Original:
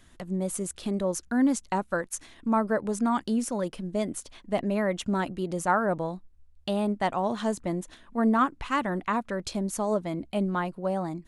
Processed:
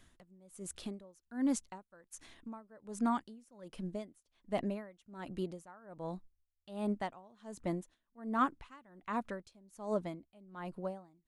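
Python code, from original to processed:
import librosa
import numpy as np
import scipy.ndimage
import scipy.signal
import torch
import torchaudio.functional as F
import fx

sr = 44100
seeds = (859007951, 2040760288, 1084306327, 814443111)

y = x * 10.0 ** (-27 * (0.5 - 0.5 * np.cos(2.0 * np.pi * 1.3 * np.arange(len(x)) / sr)) / 20.0)
y = y * librosa.db_to_amplitude(-5.5)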